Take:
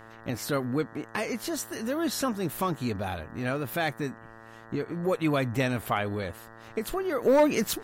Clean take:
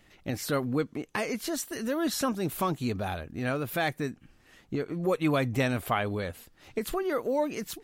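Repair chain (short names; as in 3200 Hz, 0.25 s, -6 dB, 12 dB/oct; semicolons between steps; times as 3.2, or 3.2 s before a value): clip repair -15 dBFS; de-hum 112.7 Hz, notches 17; gain 0 dB, from 7.22 s -8.5 dB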